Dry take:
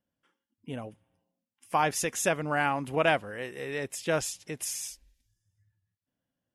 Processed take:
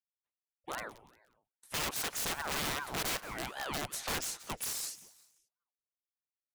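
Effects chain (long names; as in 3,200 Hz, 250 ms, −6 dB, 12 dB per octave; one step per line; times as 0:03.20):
downward expander −54 dBFS
low-shelf EQ 150 Hz −9 dB
in parallel at −2 dB: downward compressor 10 to 1, threshold −34 dBFS, peak gain reduction 15 dB
on the sum: wrap-around overflow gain 24 dB
echo with shifted repeats 177 ms, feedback 41%, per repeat +64 Hz, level −17.5 dB
ring modulator whose carrier an LFO sweeps 730 Hz, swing 80%, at 2.5 Hz
level −2.5 dB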